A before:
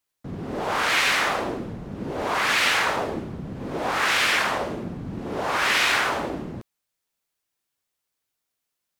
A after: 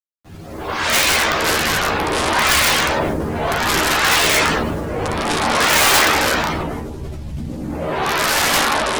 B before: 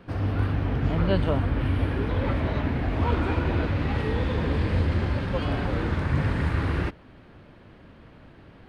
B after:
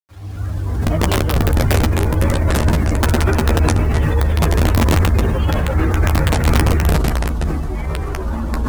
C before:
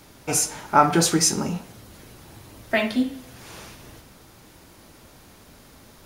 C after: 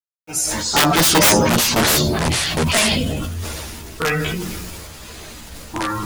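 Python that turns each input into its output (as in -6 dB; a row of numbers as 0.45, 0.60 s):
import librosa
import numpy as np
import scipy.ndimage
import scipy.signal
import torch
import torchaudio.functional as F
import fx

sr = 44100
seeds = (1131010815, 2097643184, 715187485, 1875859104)

y = fx.fade_in_head(x, sr, length_s=0.91)
y = fx.spec_gate(y, sr, threshold_db=-30, keep='strong')
y = fx.high_shelf(y, sr, hz=4100.0, db=6.0)
y = fx.quant_dither(y, sr, seeds[0], bits=8, dither='none')
y = fx.chorus_voices(y, sr, voices=6, hz=0.35, base_ms=11, depth_ms=1.8, mix_pct=65)
y = (np.mod(10.0 ** (14.5 / 20.0) * y + 1.0, 2.0) - 1.0) / 10.0 ** (14.5 / 20.0)
y = fx.echo_pitch(y, sr, ms=136, semitones=-6, count=2, db_per_echo=-3.0)
y = fx.doubler(y, sr, ms=13.0, db=-9)
y = fx.sustainer(y, sr, db_per_s=22.0)
y = y * 10.0 ** (-1.5 / 20.0) / np.max(np.abs(y))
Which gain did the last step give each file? 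+6.0, +4.0, +5.5 dB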